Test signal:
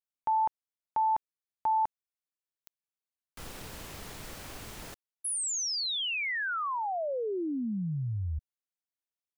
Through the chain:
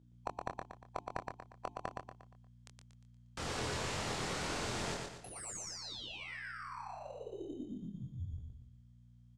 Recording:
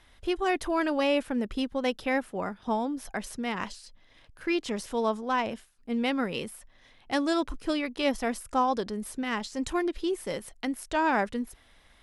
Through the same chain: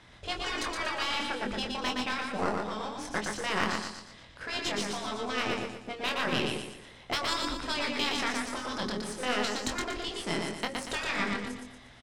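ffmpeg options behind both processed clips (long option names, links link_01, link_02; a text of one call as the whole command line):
ffmpeg -i in.wav -filter_complex "[0:a]aeval=exprs='val(0)+0.000708*(sin(2*PI*60*n/s)+sin(2*PI*2*60*n/s)/2+sin(2*PI*3*60*n/s)/3+sin(2*PI*4*60*n/s)/4+sin(2*PI*5*60*n/s)/5)':channel_layout=same,highpass=frequency=95:poles=1,bandreject=frequency=50:width_type=h:width=6,bandreject=frequency=100:width_type=h:width=6,bandreject=frequency=150:width_type=h:width=6,bandreject=frequency=200:width_type=h:width=6,bandreject=frequency=250:width_type=h:width=6,bandreject=frequency=300:width_type=h:width=6,bandreject=frequency=350:width_type=h:width=6,bandreject=frequency=400:width_type=h:width=6,afftfilt=real='re*lt(hypot(re,im),0.112)':imag='im*lt(hypot(re,im),0.112)':win_size=1024:overlap=0.75,asplit=2[link_01][link_02];[link_02]acrusher=samples=13:mix=1:aa=0.000001,volume=-10.5dB[link_03];[link_01][link_03]amix=inputs=2:normalize=0,lowpass=frequency=8100:width=0.5412,lowpass=frequency=8100:width=1.3066,aeval=exprs='0.188*(cos(1*acos(clip(val(0)/0.188,-1,1)))-cos(1*PI/2))+0.0119*(cos(8*acos(clip(val(0)/0.188,-1,1)))-cos(8*PI/2))':channel_layout=same,asplit=2[link_04][link_05];[link_05]adelay=24,volume=-5.5dB[link_06];[link_04][link_06]amix=inputs=2:normalize=0,asplit=2[link_07][link_08];[link_08]aecho=0:1:118|236|354|472|590:0.668|0.274|0.112|0.0461|0.0189[link_09];[link_07][link_09]amix=inputs=2:normalize=0,volume=3.5dB" out.wav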